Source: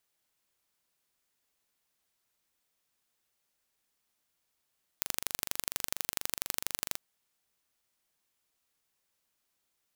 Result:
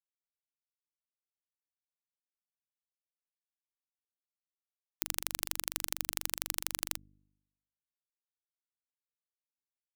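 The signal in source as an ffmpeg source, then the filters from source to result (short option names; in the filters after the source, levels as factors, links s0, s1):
-f lavfi -i "aevalsrc='0.75*eq(mod(n,1815),0)*(0.5+0.5*eq(mod(n,3630),0))':d=1.94:s=44100"
-af "afftfilt=real='re*gte(hypot(re,im),0.00224)':imag='im*gte(hypot(re,im),0.00224)':win_size=1024:overlap=0.75,bandreject=f=50:t=h:w=6,bandreject=f=100:t=h:w=6,bandreject=f=150:t=h:w=6,bandreject=f=200:t=h:w=6,bandreject=f=250:t=h:w=6,bandreject=f=300:t=h:w=6,areverse,acompressor=mode=upward:threshold=0.00355:ratio=2.5,areverse"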